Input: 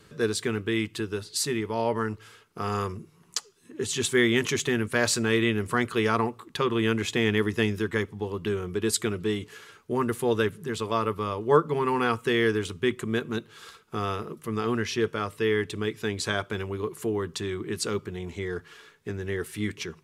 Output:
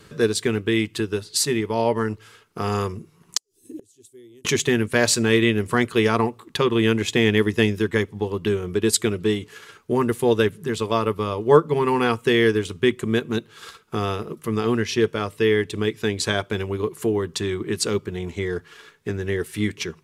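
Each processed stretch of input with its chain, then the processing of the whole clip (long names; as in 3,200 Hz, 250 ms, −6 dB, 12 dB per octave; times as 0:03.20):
0:03.37–0:04.45: drawn EQ curve 110 Hz 0 dB, 200 Hz −14 dB, 290 Hz +6 dB, 1,400 Hz −24 dB, 2,500 Hz −12 dB, 11,000 Hz +8 dB + gate with flip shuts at −33 dBFS, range −30 dB
whole clip: dynamic equaliser 1,300 Hz, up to −5 dB, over −44 dBFS, Q 2; transient designer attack +1 dB, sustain −4 dB; level +6 dB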